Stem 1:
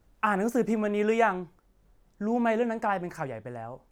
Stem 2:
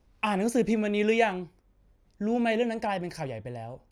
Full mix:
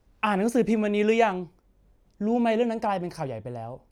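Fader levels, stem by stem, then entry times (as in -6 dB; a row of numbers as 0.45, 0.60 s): -5.0, -1.5 dB; 0.00, 0.00 s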